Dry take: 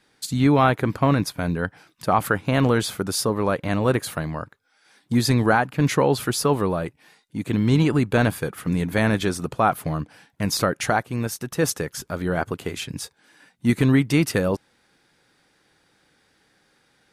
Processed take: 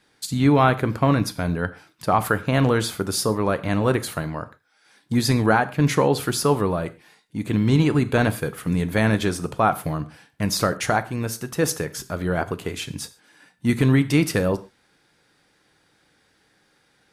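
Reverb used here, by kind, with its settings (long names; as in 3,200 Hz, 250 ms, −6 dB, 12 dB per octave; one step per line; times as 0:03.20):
reverb whose tail is shaped and stops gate 160 ms falling, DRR 12 dB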